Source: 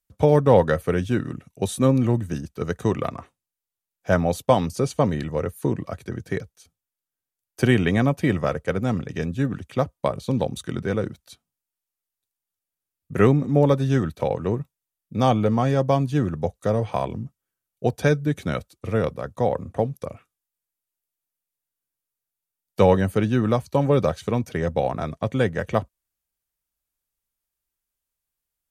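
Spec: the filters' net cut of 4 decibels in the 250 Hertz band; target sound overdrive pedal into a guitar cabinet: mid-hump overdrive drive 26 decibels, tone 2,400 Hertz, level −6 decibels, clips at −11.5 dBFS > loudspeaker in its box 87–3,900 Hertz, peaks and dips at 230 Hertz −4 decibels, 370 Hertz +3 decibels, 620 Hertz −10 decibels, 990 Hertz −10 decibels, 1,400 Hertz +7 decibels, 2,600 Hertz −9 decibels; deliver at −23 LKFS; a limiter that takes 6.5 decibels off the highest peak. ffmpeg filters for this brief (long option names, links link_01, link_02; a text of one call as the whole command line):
ffmpeg -i in.wav -filter_complex "[0:a]equalizer=frequency=250:width_type=o:gain=-3.5,alimiter=limit=-11.5dB:level=0:latency=1,asplit=2[link_01][link_02];[link_02]highpass=frequency=720:poles=1,volume=26dB,asoftclip=type=tanh:threshold=-11.5dB[link_03];[link_01][link_03]amix=inputs=2:normalize=0,lowpass=frequency=2400:poles=1,volume=-6dB,highpass=87,equalizer=frequency=230:width_type=q:width=4:gain=-4,equalizer=frequency=370:width_type=q:width=4:gain=3,equalizer=frequency=620:width_type=q:width=4:gain=-10,equalizer=frequency=990:width_type=q:width=4:gain=-10,equalizer=frequency=1400:width_type=q:width=4:gain=7,equalizer=frequency=2600:width_type=q:width=4:gain=-9,lowpass=frequency=3900:width=0.5412,lowpass=frequency=3900:width=1.3066,volume=0.5dB" out.wav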